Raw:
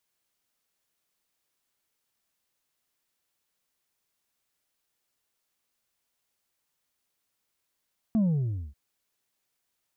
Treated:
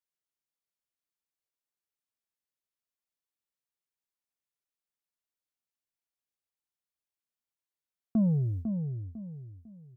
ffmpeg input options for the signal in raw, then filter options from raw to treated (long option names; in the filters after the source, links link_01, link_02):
-f lavfi -i "aevalsrc='0.0891*clip((0.59-t)/0.53,0,1)*tanh(1.41*sin(2*PI*230*0.59/log(65/230)*(exp(log(65/230)*t/0.59)-1)))/tanh(1.41)':duration=0.59:sample_rate=44100"
-filter_complex "[0:a]agate=range=-17dB:threshold=-35dB:ratio=16:detection=peak,asplit=2[link_01][link_02];[link_02]adelay=500,lowpass=frequency=840:poles=1,volume=-6.5dB,asplit=2[link_03][link_04];[link_04]adelay=500,lowpass=frequency=840:poles=1,volume=0.34,asplit=2[link_05][link_06];[link_06]adelay=500,lowpass=frequency=840:poles=1,volume=0.34,asplit=2[link_07][link_08];[link_08]adelay=500,lowpass=frequency=840:poles=1,volume=0.34[link_09];[link_03][link_05][link_07][link_09]amix=inputs=4:normalize=0[link_10];[link_01][link_10]amix=inputs=2:normalize=0"